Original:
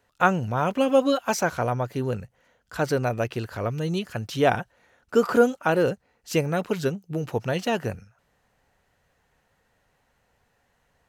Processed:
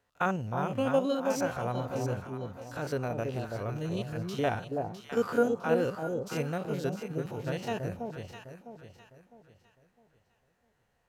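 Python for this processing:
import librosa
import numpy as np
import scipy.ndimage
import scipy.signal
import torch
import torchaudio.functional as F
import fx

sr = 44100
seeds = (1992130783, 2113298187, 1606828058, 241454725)

y = fx.spec_steps(x, sr, hold_ms=50)
y = fx.echo_alternate(y, sr, ms=328, hz=890.0, feedback_pct=58, wet_db=-3.5)
y = y * librosa.db_to_amplitude(-7.0)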